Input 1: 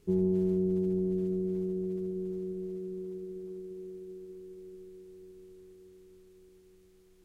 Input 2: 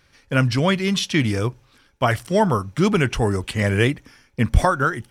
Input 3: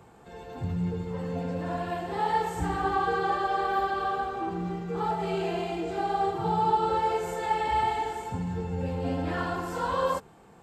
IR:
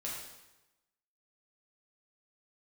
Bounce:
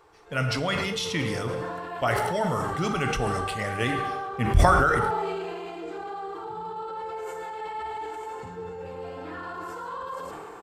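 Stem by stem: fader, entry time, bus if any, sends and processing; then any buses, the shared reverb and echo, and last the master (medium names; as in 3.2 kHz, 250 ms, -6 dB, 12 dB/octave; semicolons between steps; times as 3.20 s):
mute
-10.0 dB, 0.00 s, no bus, send -3.5 dB, no echo send, harmonic-percussive split harmonic -7 dB; comb 1.5 ms, depth 31%
+2.0 dB, 0.00 s, bus A, no send, echo send -17 dB, peak limiter -21.5 dBFS, peak gain reduction 8 dB
bus A: 0.0 dB, rippled Chebyshev high-pass 300 Hz, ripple 9 dB; peak limiter -29 dBFS, peak gain reduction 8.5 dB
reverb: on, RT60 1.0 s, pre-delay 3 ms
echo: delay 110 ms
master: decay stretcher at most 21 dB/s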